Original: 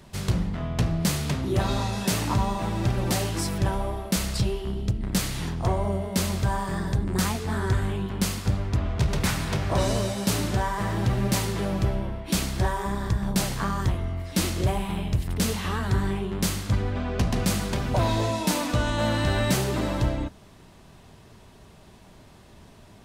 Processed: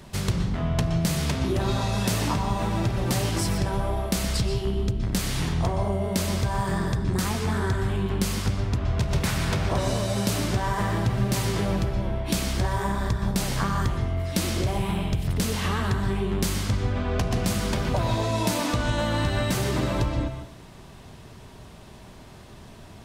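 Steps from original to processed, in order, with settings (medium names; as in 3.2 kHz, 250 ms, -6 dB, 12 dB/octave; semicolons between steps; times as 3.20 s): compression, threshold -26 dBFS, peak gain reduction 8.5 dB; on a send: reverberation RT60 0.45 s, pre-delay 113 ms, DRR 6.5 dB; on the sum: trim +4 dB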